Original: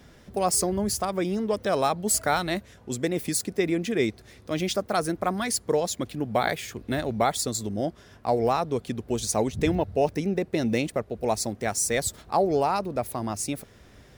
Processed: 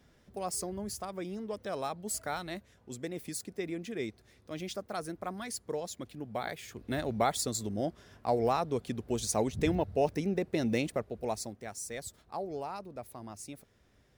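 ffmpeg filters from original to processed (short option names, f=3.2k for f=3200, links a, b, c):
-af "volume=-5dB,afade=t=in:st=6.55:d=0.5:silence=0.446684,afade=t=out:st=10.93:d=0.72:silence=0.316228"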